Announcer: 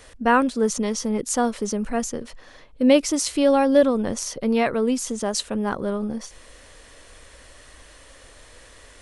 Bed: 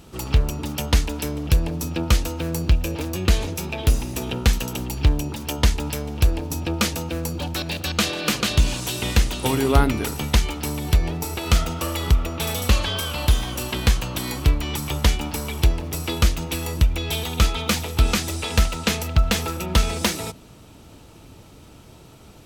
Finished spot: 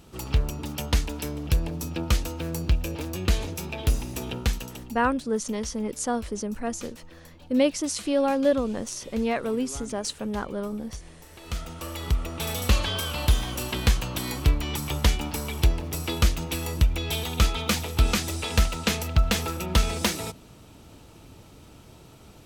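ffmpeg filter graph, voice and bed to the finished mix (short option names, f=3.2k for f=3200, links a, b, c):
-filter_complex "[0:a]adelay=4700,volume=-5.5dB[a];[1:a]volume=15dB,afade=t=out:st=4.27:d=0.81:silence=0.125893,afade=t=in:st=11.26:d=1.49:silence=0.1[b];[a][b]amix=inputs=2:normalize=0"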